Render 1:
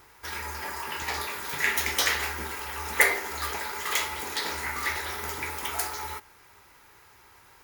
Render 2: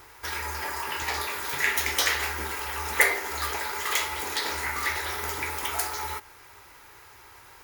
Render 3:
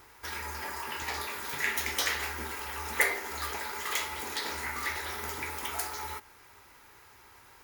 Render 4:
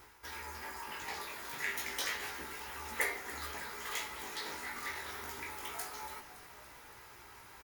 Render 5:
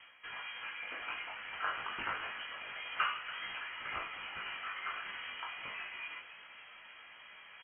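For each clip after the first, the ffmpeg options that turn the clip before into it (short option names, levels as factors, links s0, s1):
-filter_complex "[0:a]equalizer=f=190:t=o:w=0.34:g=-14.5,asplit=2[s0][s1];[s1]acompressor=threshold=0.0141:ratio=6,volume=1[s2];[s0][s2]amix=inputs=2:normalize=0,volume=0.891"
-af "equalizer=f=210:w=2.7:g=8.5,volume=0.531"
-filter_complex "[0:a]areverse,acompressor=mode=upward:threshold=0.0126:ratio=2.5,areverse,flanger=delay=16.5:depth=3.9:speed=0.29,asplit=7[s0][s1][s2][s3][s4][s5][s6];[s1]adelay=283,afreqshift=-130,volume=0.188[s7];[s2]adelay=566,afreqshift=-260,volume=0.114[s8];[s3]adelay=849,afreqshift=-390,volume=0.0676[s9];[s4]adelay=1132,afreqshift=-520,volume=0.0407[s10];[s5]adelay=1415,afreqshift=-650,volume=0.0245[s11];[s6]adelay=1698,afreqshift=-780,volume=0.0146[s12];[s0][s7][s8][s9][s10][s11][s12]amix=inputs=7:normalize=0,volume=0.631"
-af "lowpass=f=2800:t=q:w=0.5098,lowpass=f=2800:t=q:w=0.6013,lowpass=f=2800:t=q:w=0.9,lowpass=f=2800:t=q:w=2.563,afreqshift=-3300,volume=1.19"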